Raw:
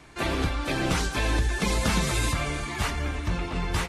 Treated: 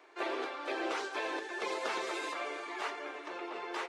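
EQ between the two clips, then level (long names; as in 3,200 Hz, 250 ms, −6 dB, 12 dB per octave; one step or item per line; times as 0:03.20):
elliptic high-pass filter 360 Hz, stop band 80 dB
head-to-tape spacing loss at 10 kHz 27 dB
high-shelf EQ 6,400 Hz +11 dB
−3.0 dB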